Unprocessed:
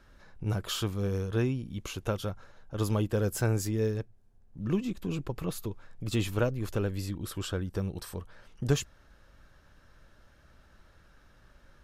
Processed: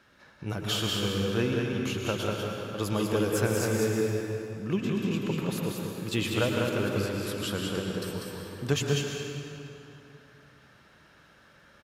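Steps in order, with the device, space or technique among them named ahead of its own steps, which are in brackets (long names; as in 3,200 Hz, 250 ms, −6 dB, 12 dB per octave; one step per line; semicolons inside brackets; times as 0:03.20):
PA in a hall (high-pass filter 130 Hz 12 dB per octave; parametric band 2,600 Hz +5.5 dB 1.4 octaves; single-tap delay 195 ms −4 dB; convolution reverb RT60 2.9 s, pre-delay 103 ms, DRR 1 dB)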